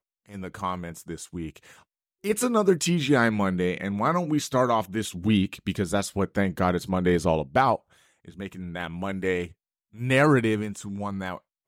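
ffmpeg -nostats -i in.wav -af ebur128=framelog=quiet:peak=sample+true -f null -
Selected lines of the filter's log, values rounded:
Integrated loudness:
  I:         -25.4 LUFS
  Threshold: -36.3 LUFS
Loudness range:
  LRA:         3.0 LU
  Threshold: -45.8 LUFS
  LRA low:   -27.2 LUFS
  LRA high:  -24.2 LUFS
Sample peak:
  Peak:       -7.3 dBFS
True peak:
  Peak:       -7.3 dBFS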